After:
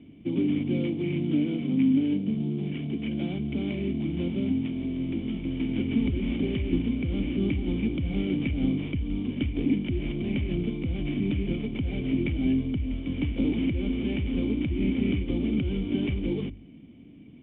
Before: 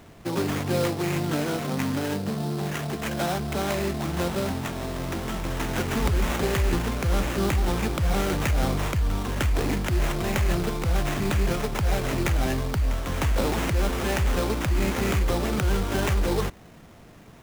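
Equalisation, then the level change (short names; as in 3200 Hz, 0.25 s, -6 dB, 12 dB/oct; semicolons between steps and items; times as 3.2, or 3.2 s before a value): vocal tract filter i; HPF 43 Hz; notches 50/100 Hz; +8.5 dB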